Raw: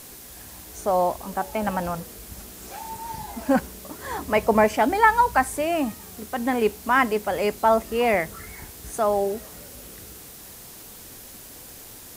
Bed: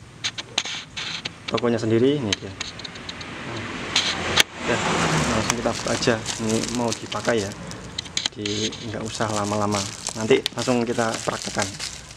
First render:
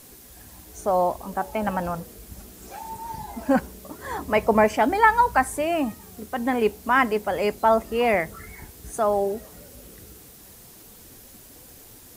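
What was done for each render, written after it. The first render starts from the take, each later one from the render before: noise reduction 6 dB, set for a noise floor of -43 dBFS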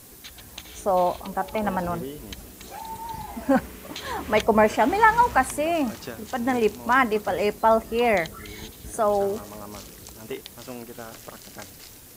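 add bed -17 dB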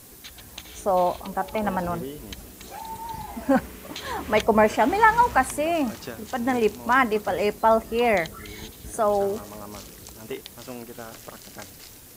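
no audible change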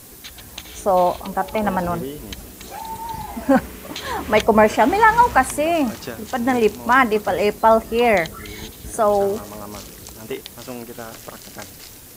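trim +5 dB; peak limiter -2 dBFS, peak gain reduction 2.5 dB

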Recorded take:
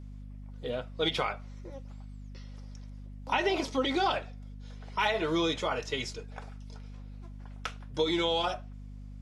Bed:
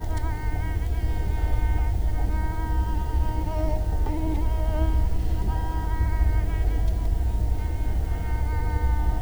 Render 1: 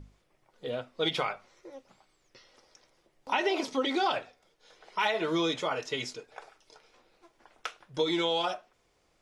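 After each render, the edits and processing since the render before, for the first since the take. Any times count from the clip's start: hum notches 50/100/150/200/250 Hz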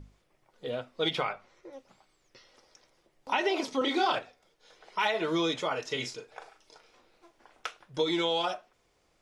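1.15–1.73 s: tone controls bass +1 dB, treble -6 dB; 3.78–4.19 s: doubling 32 ms -5 dB; 5.83–7.66 s: doubling 38 ms -8.5 dB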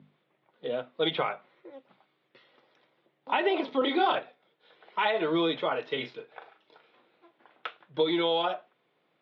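Chebyshev band-pass 140–3700 Hz, order 4; dynamic bell 590 Hz, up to +4 dB, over -42 dBFS, Q 0.77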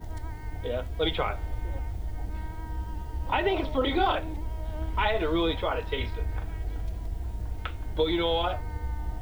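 add bed -9.5 dB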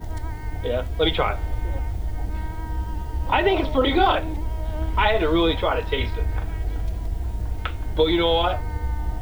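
trim +6.5 dB

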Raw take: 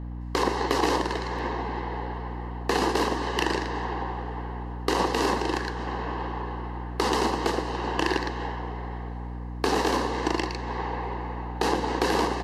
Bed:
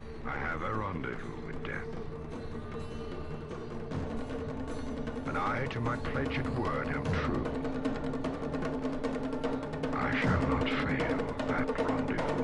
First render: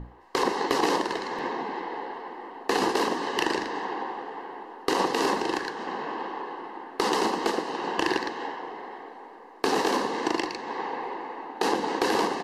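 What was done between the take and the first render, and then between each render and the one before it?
hum notches 60/120/180/240/300 Hz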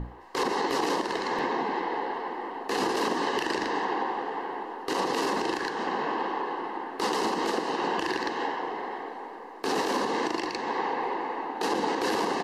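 in parallel at -2 dB: compression, threshold -33 dBFS, peak gain reduction 13 dB; on the sum: peak limiter -17.5 dBFS, peak gain reduction 10.5 dB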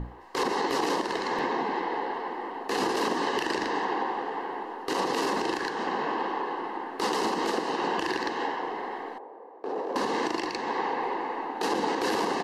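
9.18–9.96 s: band-pass filter 540 Hz, Q 1.7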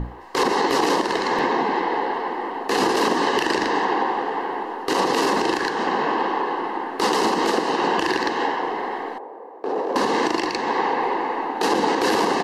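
trim +7.5 dB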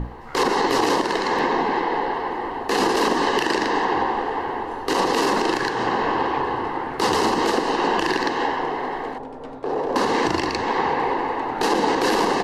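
add bed -5 dB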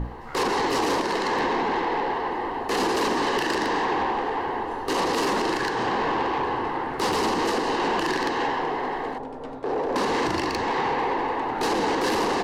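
saturation -19 dBFS, distortion -12 dB

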